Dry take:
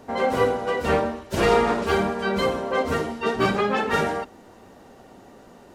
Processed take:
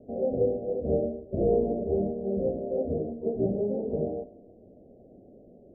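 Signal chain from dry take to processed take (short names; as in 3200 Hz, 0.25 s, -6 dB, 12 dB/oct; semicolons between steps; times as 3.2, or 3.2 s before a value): steep low-pass 660 Hz 72 dB/oct; on a send: thinning echo 85 ms, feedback 70%, high-pass 300 Hz, level -18 dB; on the sum: gain -3.5 dB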